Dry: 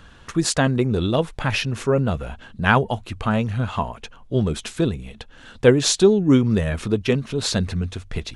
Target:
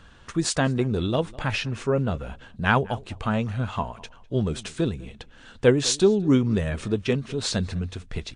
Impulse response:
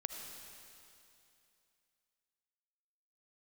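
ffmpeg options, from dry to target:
-filter_complex "[0:a]asettb=1/sr,asplit=3[link_01][link_02][link_03];[link_01]atrim=end=1.564[link_04];[link_02]atrim=start=1.56:end=2.29,asetpts=PTS-STARTPTS,afade=type=in:duration=0.004:curve=qsin,afade=type=out:start_time=0.726:duration=0.004:curve=qsin,highshelf=frequency=6900:gain=-5.5[link_05];[link_03]atrim=start=2.286[link_06];[link_04][link_05]acrossfade=duration=0.004:curve1=hsin:curve2=qsin[link_07];[link_07][link_06]acrossfade=duration=0.004:curve1=qsin:curve2=hsin,asplit=2[link_08][link_09];[link_09]adelay=202,lowpass=frequency=3000:poles=1,volume=-21.5dB,asplit=2[link_10][link_11];[link_11]adelay=202,lowpass=frequency=3000:poles=1,volume=0.17[link_12];[link_08][link_10][link_12]amix=inputs=3:normalize=0,volume=-3.5dB" -ar 22050 -c:a libmp3lame -b:a 56k

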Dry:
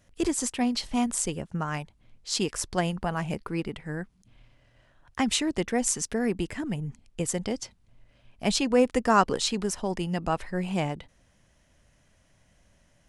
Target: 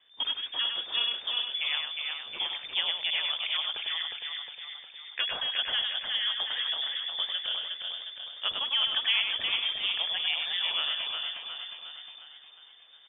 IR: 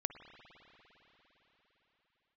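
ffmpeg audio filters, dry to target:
-filter_complex "[0:a]acrossover=split=550|2300[link_01][link_02][link_03];[link_01]acompressor=threshold=-33dB:ratio=4[link_04];[link_02]acompressor=threshold=-30dB:ratio=4[link_05];[link_03]acompressor=threshold=-42dB:ratio=4[link_06];[link_04][link_05][link_06]amix=inputs=3:normalize=0,asplit=9[link_07][link_08][link_09][link_10][link_11][link_12][link_13][link_14][link_15];[link_08]adelay=359,afreqshift=-33,volume=-4dB[link_16];[link_09]adelay=718,afreqshift=-66,volume=-9dB[link_17];[link_10]adelay=1077,afreqshift=-99,volume=-14.1dB[link_18];[link_11]adelay=1436,afreqshift=-132,volume=-19.1dB[link_19];[link_12]adelay=1795,afreqshift=-165,volume=-24.1dB[link_20];[link_13]adelay=2154,afreqshift=-198,volume=-29.2dB[link_21];[link_14]adelay=2513,afreqshift=-231,volume=-34.2dB[link_22];[link_15]adelay=2872,afreqshift=-264,volume=-39.3dB[link_23];[link_07][link_16][link_17][link_18][link_19][link_20][link_21][link_22][link_23]amix=inputs=9:normalize=0,asplit=2[link_24][link_25];[1:a]atrim=start_sample=2205,atrim=end_sample=3528,adelay=100[link_26];[link_25][link_26]afir=irnorm=-1:irlink=0,volume=-4dB[link_27];[link_24][link_27]amix=inputs=2:normalize=0,lowpass=frequency=3100:width_type=q:width=0.5098,lowpass=frequency=3100:width_type=q:width=0.6013,lowpass=frequency=3100:width_type=q:width=0.9,lowpass=frequency=3100:width_type=q:width=2.563,afreqshift=-3600"

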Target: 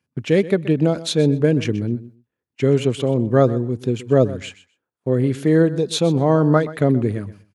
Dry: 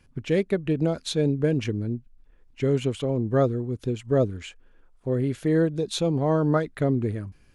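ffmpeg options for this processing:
ffmpeg -i in.wav -af "highpass=frequency=100:width=0.5412,highpass=frequency=100:width=1.3066,agate=range=-20dB:threshold=-51dB:ratio=16:detection=peak,aecho=1:1:126|252:0.15|0.0239,volume=6.5dB" out.wav

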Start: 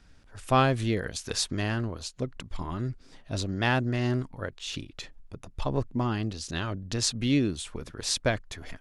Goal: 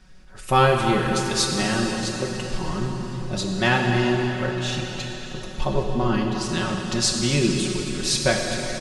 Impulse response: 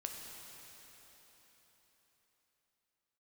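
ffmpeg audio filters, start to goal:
-filter_complex "[0:a]aecho=1:1:5.4:0.86[link_01];[1:a]atrim=start_sample=2205[link_02];[link_01][link_02]afir=irnorm=-1:irlink=0,volume=6.5dB"

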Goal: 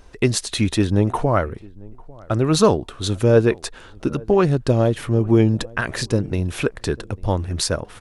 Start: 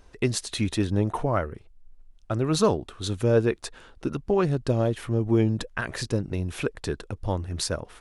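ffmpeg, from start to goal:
ffmpeg -i in.wav -filter_complex "[0:a]asplit=2[link_01][link_02];[link_02]adelay=847,lowpass=frequency=1100:poles=1,volume=-23.5dB,asplit=2[link_03][link_04];[link_04]adelay=847,lowpass=frequency=1100:poles=1,volume=0.26[link_05];[link_01][link_03][link_05]amix=inputs=3:normalize=0,volume=6.5dB" out.wav

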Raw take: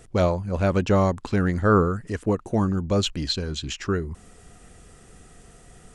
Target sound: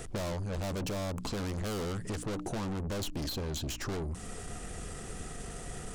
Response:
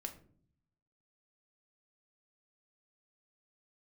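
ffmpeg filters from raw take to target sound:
-filter_complex "[0:a]bandreject=frequency=60:width_type=h:width=6,bandreject=frequency=120:width_type=h:width=6,bandreject=frequency=180:width_type=h:width=6,bandreject=frequency=240:width_type=h:width=6,bandreject=frequency=300:width_type=h:width=6,aeval=exprs='(tanh(63.1*val(0)+0.3)-tanh(0.3))/63.1':channel_layout=same,acrossover=split=1200|3900[link_01][link_02][link_03];[link_01]acompressor=threshold=-43dB:ratio=4[link_04];[link_02]acompressor=threshold=-60dB:ratio=4[link_05];[link_03]acompressor=threshold=-49dB:ratio=4[link_06];[link_04][link_05][link_06]amix=inputs=3:normalize=0,volume=9dB"

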